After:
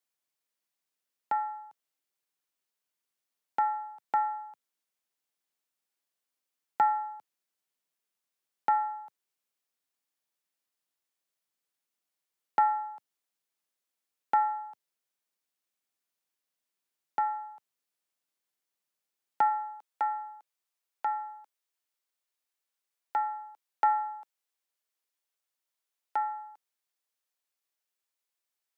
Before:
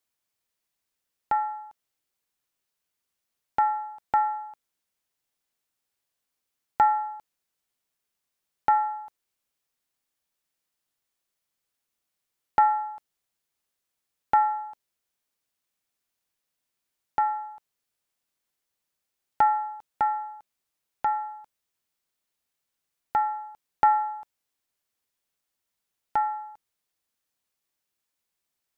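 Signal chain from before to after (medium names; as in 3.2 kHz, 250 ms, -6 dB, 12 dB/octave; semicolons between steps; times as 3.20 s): Bessel high-pass 190 Hz, order 8, from 19.49 s 440 Hz; trim -4.5 dB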